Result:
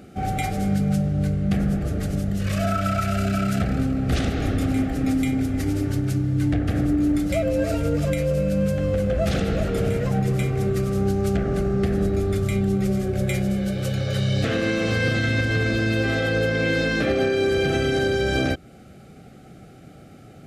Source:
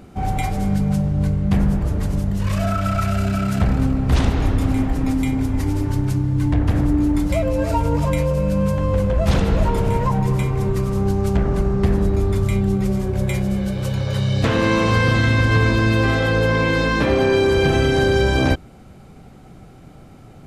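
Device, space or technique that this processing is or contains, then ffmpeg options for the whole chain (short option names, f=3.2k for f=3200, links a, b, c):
PA system with an anti-feedback notch: -af "highpass=f=120:p=1,asuperstop=centerf=970:order=4:qfactor=2.5,alimiter=limit=-12.5dB:level=0:latency=1:release=203"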